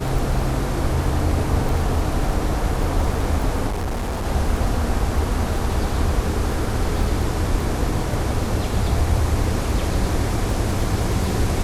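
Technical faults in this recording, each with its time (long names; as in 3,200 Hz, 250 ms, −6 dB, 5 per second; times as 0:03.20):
surface crackle 15 per second −25 dBFS
0:03.67–0:04.26: clipping −21 dBFS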